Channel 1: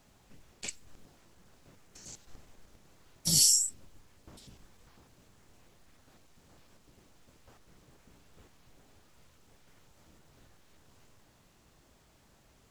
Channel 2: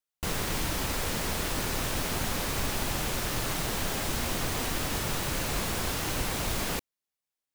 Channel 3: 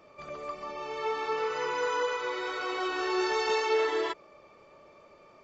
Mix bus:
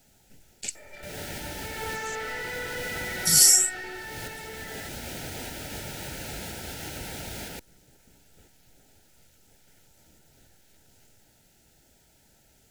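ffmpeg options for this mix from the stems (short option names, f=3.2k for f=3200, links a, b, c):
-filter_complex "[0:a]highshelf=f=6.7k:g=11.5,volume=0.5dB,asplit=2[a][b];[1:a]highpass=45,adelay=800,volume=-3dB[c];[2:a]equalizer=f=1.9k:t=o:w=0.33:g=14.5,asplit=2[d][e];[e]highpass=f=720:p=1,volume=35dB,asoftclip=type=tanh:threshold=-15dB[f];[d][f]amix=inputs=2:normalize=0,lowpass=f=2.2k:p=1,volume=-6dB,adelay=750,volume=-11.5dB,afade=t=in:st=1.62:d=0.3:silence=0.446684,afade=t=out:st=3.42:d=0.76:silence=0.375837[g];[b]apad=whole_len=368206[h];[c][h]sidechaincompress=threshold=-57dB:ratio=8:attack=16:release=247[i];[a][i][g]amix=inputs=3:normalize=0,asuperstop=centerf=1100:order=12:qfactor=3.3"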